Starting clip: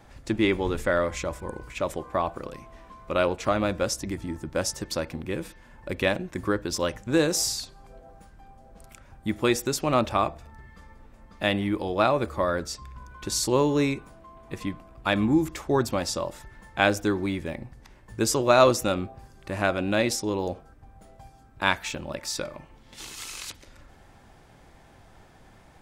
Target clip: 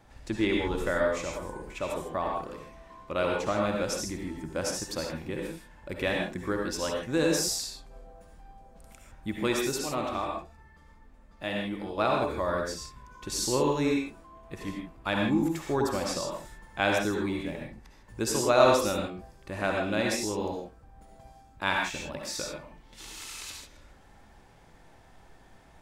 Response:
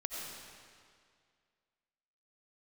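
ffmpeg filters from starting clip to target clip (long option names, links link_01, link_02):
-filter_complex "[0:a]asettb=1/sr,asplit=3[link_01][link_02][link_03];[link_01]atrim=end=9.824[link_04];[link_02]atrim=start=9.82:end=11.98,asetpts=PTS-STARTPTS,afade=type=in:duration=0.004:curve=qsin,afade=type=out:start_time=2.156:duration=0.004:curve=qsin,flanger=delay=3.8:depth=3.2:regen=64:speed=1.6:shape=sinusoidal[link_05];[link_03]atrim=start=11.976[link_06];[link_04][link_05]acrossfade=duration=0.004:curve1=hsin:curve2=qsin[link_07];[link_07][link_06]acrossfade=duration=0.004:curve1=qsin:curve2=hsin[link_08];[1:a]atrim=start_sample=2205,afade=type=out:start_time=0.28:duration=0.01,atrim=end_sample=12789,asetrate=61740,aresample=44100[link_09];[link_08][link_09]afir=irnorm=-1:irlink=0"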